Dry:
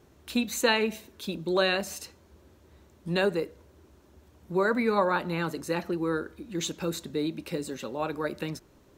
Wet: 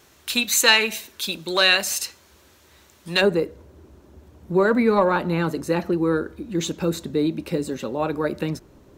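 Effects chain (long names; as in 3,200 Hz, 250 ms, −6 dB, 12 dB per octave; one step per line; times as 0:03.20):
soft clipping −12 dBFS, distortion −26 dB
tilt shelving filter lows −8.5 dB, about 890 Hz, from 0:03.20 lows +3 dB
level +6 dB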